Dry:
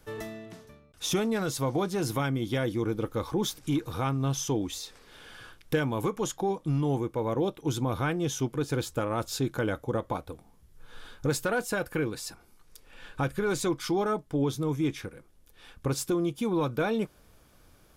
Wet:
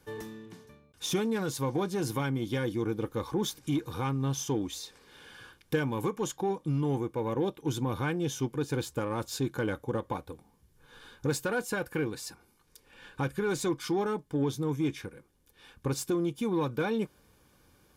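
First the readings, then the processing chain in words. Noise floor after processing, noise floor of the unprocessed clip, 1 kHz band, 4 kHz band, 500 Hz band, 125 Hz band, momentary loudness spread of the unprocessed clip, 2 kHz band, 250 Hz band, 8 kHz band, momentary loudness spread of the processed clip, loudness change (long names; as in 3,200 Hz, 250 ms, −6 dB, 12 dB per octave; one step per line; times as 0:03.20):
−66 dBFS, −60 dBFS, −2.5 dB, −2.5 dB, −2.0 dB, −2.0 dB, 11 LU, −2.0 dB, −1.5 dB, −2.5 dB, 12 LU, −2.0 dB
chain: harmonic generator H 8 −32 dB, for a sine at −14.5 dBFS
notch comb filter 660 Hz
level −1.5 dB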